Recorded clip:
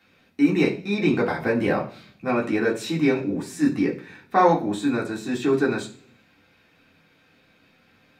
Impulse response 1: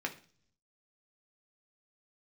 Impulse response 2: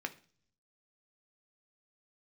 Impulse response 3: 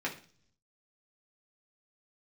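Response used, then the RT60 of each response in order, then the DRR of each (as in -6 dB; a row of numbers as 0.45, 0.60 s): 3; 0.45, 0.45, 0.45 s; 2.0, 6.5, -3.5 dB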